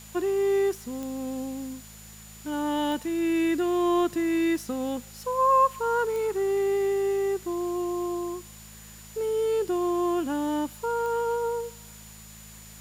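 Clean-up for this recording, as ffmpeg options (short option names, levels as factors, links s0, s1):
-af "adeclick=t=4,bandreject=f=53.6:t=h:w=4,bandreject=f=107.2:t=h:w=4,bandreject=f=160.8:t=h:w=4,bandreject=f=214.4:t=h:w=4,bandreject=f=7000:w=30,afwtdn=0.0035"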